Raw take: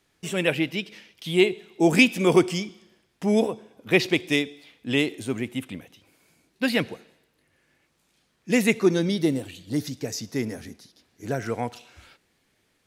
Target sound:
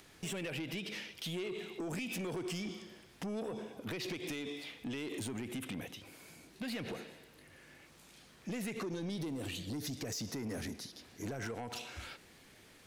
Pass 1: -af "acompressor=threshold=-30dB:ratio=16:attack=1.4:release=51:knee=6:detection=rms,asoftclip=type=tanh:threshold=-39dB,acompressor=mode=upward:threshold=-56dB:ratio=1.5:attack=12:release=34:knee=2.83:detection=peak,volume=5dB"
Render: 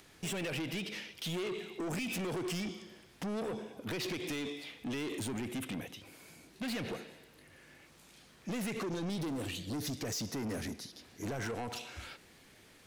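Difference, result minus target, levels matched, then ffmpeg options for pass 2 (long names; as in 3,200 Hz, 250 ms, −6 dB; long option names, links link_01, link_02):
downward compressor: peak gain reduction −6.5 dB
-af "acompressor=threshold=-37dB:ratio=16:attack=1.4:release=51:knee=6:detection=rms,asoftclip=type=tanh:threshold=-39dB,acompressor=mode=upward:threshold=-56dB:ratio=1.5:attack=12:release=34:knee=2.83:detection=peak,volume=5dB"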